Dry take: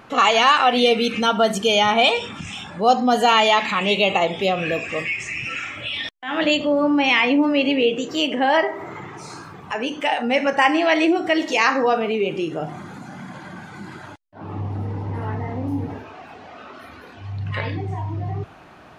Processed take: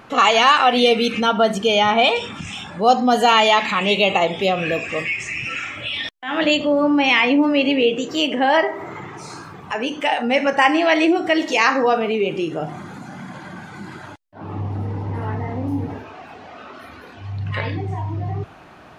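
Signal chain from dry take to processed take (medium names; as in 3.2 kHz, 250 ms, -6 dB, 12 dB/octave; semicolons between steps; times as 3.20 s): 1.20–2.16 s: treble shelf 5.8 kHz -10 dB; trim +1.5 dB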